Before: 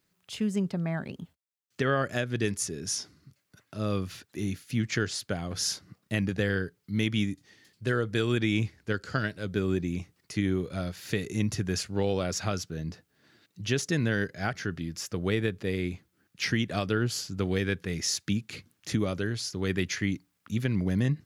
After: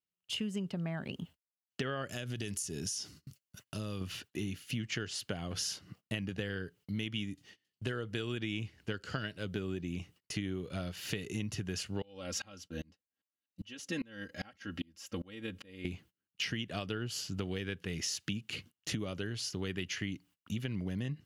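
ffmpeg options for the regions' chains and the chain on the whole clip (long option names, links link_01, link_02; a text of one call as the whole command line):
ffmpeg -i in.wav -filter_complex "[0:a]asettb=1/sr,asplit=3[link_01][link_02][link_03];[link_01]atrim=end=2.084[link_04];[link_02]atrim=start=2.08:end=4.01,asetpts=PTS-STARTPTS,afade=type=in:duration=0.004:curve=qsin,afade=type=out:start_time=1.926:duration=0.004:curve=qsin,bass=frequency=250:gain=4,treble=frequency=4000:gain=11,acompressor=threshold=-33dB:ratio=4:attack=3.2:release=140:knee=1:detection=peak[link_05];[link_03]atrim=start=4.006[link_06];[link_04][link_05]acrossfade=duration=0.004:curve1=hsin:curve2=qsin[link_07];[link_07][link_06]acrossfade=duration=0.004:curve1=qsin:curve2=hsin,asettb=1/sr,asplit=3[link_08][link_09][link_10];[link_08]atrim=end=12.024[link_11];[link_09]atrim=start=12.02:end=15.85,asetpts=PTS-STARTPTS,afade=type=in:duration=0.004:curve=qsin,afade=type=out:start_time=3.826:duration=0.004:curve=qsin,aecho=1:1:3.7:0.89,atrim=end_sample=168903,aeval=exprs='val(0)*pow(10,-32*if(lt(mod(-2.5*n/s,1),2*abs(-2.5)/1000),1-mod(-2.5*n/s,1)/(2*abs(-2.5)/1000),(mod(-2.5*n/s,1)-2*abs(-2.5)/1000)/(1-2*abs(-2.5)/1000))/20)':channel_layout=same[link_12];[link_10]atrim=start=15.846[link_13];[link_11][link_12]acrossfade=duration=0.004:curve1=hsin:curve2=qsin[link_14];[link_14][link_13]acrossfade=duration=0.004:curve1=qsin:curve2=hsin,agate=range=-26dB:threshold=-53dB:ratio=16:detection=peak,equalizer=frequency=2900:width=6.3:gain=12.5,acompressor=threshold=-34dB:ratio=5" out.wav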